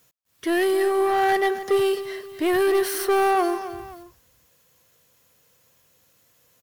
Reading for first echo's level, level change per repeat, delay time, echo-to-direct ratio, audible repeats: -13.0 dB, -7.5 dB, 263 ms, -12.5 dB, 2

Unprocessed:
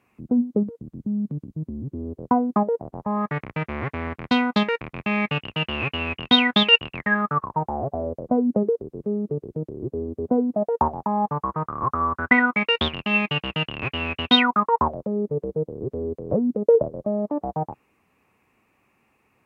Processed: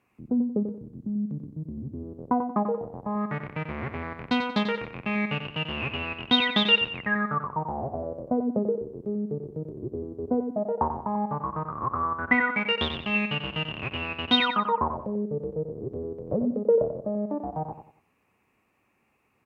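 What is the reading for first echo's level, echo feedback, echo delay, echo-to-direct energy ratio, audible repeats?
-8.0 dB, 32%, 91 ms, -7.5 dB, 3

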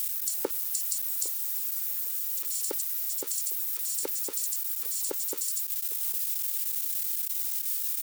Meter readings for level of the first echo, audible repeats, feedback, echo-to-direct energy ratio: -19.0 dB, 2, 26%, -18.5 dB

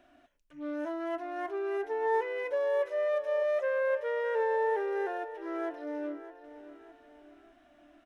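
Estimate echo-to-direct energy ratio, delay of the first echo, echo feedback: -13.0 dB, 610 ms, 45%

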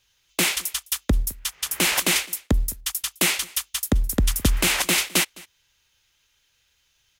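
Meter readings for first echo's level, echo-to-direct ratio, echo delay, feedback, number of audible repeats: -23.0 dB, -23.0 dB, 210 ms, no regular repeats, 1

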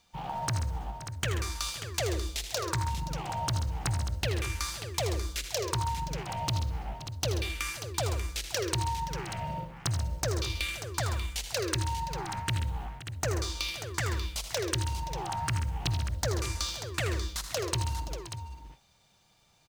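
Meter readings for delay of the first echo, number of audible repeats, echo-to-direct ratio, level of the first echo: 79 ms, 4, -5.0 dB, -10.5 dB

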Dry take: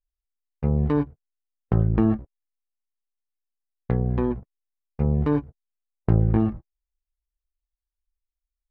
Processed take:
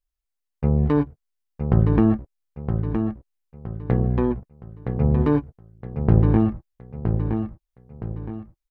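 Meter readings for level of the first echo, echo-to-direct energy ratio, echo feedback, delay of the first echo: -6.5 dB, -6.0 dB, 38%, 967 ms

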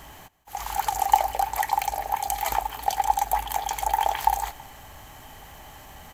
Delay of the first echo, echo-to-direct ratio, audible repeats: 163 ms, -22.0 dB, 2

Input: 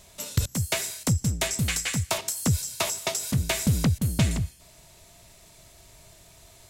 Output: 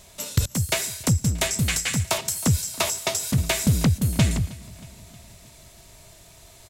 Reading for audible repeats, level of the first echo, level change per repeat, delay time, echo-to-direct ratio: 3, -21.0 dB, -4.5 dB, 315 ms, -19.0 dB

